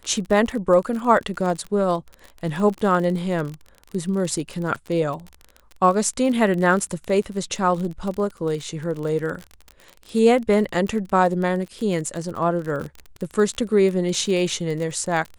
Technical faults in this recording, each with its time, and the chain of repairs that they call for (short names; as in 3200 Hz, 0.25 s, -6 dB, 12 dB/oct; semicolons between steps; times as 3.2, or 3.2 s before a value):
crackle 34/s -27 dBFS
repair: de-click